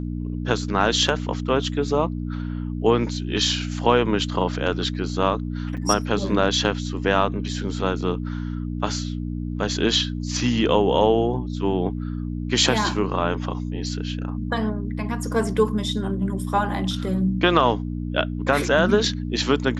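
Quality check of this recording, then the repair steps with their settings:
hum 60 Hz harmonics 5 -28 dBFS
5.77–5.78 s: dropout 6.5 ms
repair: de-hum 60 Hz, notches 5; interpolate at 5.77 s, 6.5 ms

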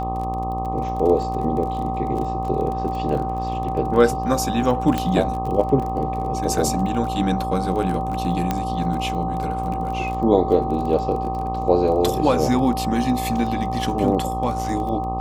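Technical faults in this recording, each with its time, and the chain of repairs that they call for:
buzz 60 Hz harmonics 21 -28 dBFS
crackle 26 per s -28 dBFS
whine 770 Hz -25 dBFS
4.98 s: pop -9 dBFS
8.51 s: pop -8 dBFS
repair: de-click; de-hum 60 Hz, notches 21; band-stop 770 Hz, Q 30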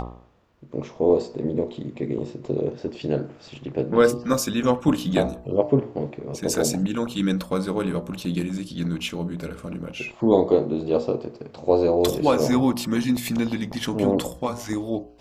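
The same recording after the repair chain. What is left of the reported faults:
nothing left

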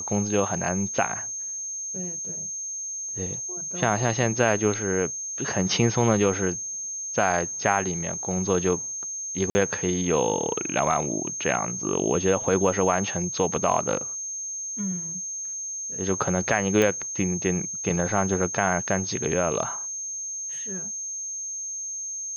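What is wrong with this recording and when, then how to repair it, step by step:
whine 6.4 kHz -30 dBFS
9.50–9.55 s: dropout 50 ms
16.82 s: pop -10 dBFS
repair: de-click; band-stop 6.4 kHz, Q 30; interpolate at 9.50 s, 50 ms

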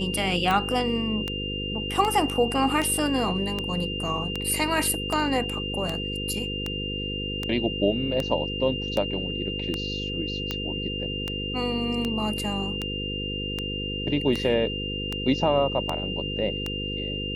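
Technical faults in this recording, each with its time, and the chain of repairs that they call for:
buzz 50 Hz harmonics 10 -33 dBFS
tick 78 rpm -13 dBFS
whine 2.8 kHz -31 dBFS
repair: de-click; de-hum 50 Hz, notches 10; band-stop 2.8 kHz, Q 30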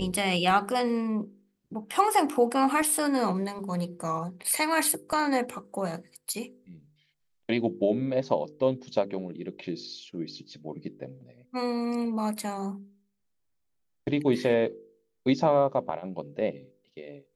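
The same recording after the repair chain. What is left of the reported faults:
nothing left

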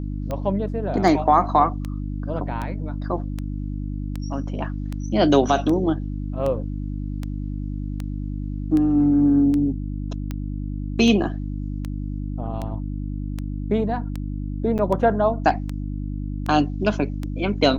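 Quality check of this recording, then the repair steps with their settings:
hum 50 Hz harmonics 6 -28 dBFS
tick 78 rpm -16 dBFS
14.78–14.79 s: dropout 8.5 ms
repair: de-click; de-hum 50 Hz, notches 6; interpolate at 14.78 s, 8.5 ms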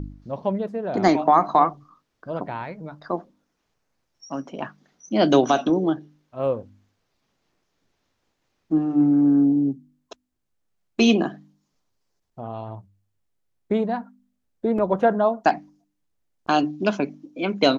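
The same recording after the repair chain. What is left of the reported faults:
nothing left

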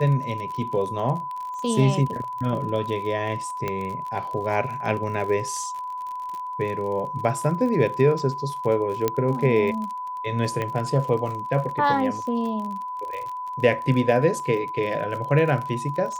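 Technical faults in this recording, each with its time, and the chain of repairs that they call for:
crackle 43 per s -31 dBFS
whine 1 kHz -29 dBFS
3.68 s: pop -13 dBFS
9.08 s: pop -8 dBFS
10.62 s: pop -15 dBFS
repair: de-click; band-stop 1 kHz, Q 30

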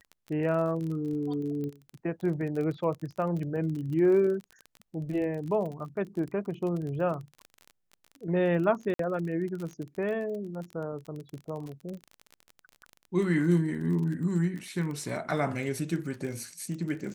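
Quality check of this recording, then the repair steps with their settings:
crackle 28 per s -35 dBFS
1.64 s: pop -26 dBFS
8.94–8.99 s: dropout 53 ms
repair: de-click; interpolate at 8.94 s, 53 ms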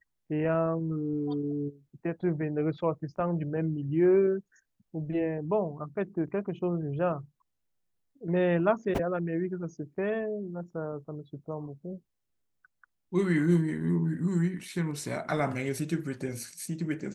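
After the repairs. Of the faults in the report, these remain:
nothing left

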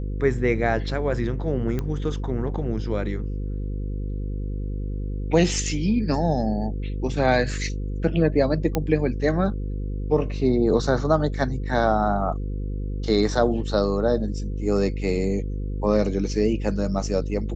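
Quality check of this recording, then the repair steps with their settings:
buzz 50 Hz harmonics 10 -28 dBFS
1.79 s: pop -15 dBFS
8.75 s: pop -9 dBFS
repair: de-click; de-hum 50 Hz, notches 10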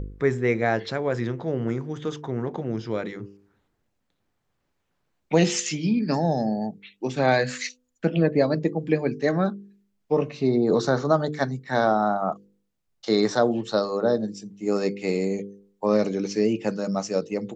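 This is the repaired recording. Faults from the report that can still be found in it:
nothing left

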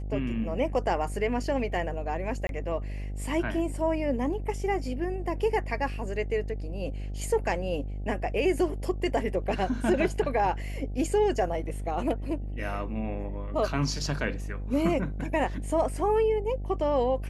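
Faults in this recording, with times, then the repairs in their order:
buzz 50 Hz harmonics 16 -34 dBFS
2.47–2.49 s: dropout 22 ms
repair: de-hum 50 Hz, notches 16; interpolate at 2.47 s, 22 ms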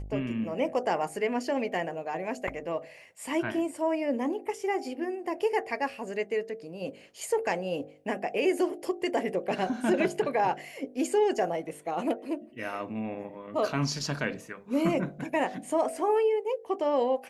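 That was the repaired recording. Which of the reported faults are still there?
nothing left

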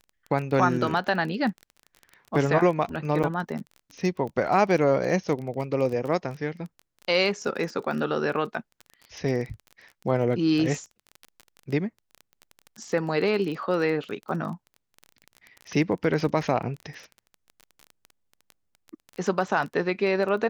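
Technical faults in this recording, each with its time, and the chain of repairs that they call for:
crackle 22 per s -32 dBFS
3.23–3.24 s: dropout 7.5 ms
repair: de-click; interpolate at 3.23 s, 7.5 ms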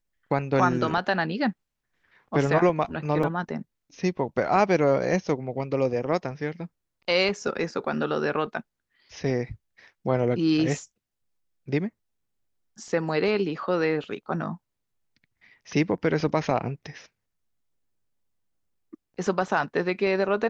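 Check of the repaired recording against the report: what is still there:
nothing left

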